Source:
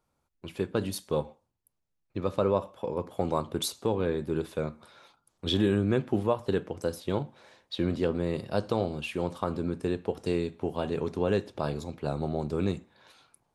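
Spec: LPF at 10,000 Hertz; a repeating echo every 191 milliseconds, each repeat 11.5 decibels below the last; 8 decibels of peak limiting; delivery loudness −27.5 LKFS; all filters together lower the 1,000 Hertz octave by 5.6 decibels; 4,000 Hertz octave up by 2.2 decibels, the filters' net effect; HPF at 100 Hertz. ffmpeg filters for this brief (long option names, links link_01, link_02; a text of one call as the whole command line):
ffmpeg -i in.wav -af "highpass=100,lowpass=10000,equalizer=frequency=1000:width_type=o:gain=-7.5,equalizer=frequency=4000:width_type=o:gain=3,alimiter=limit=-22.5dB:level=0:latency=1,aecho=1:1:191|382|573:0.266|0.0718|0.0194,volume=7.5dB" out.wav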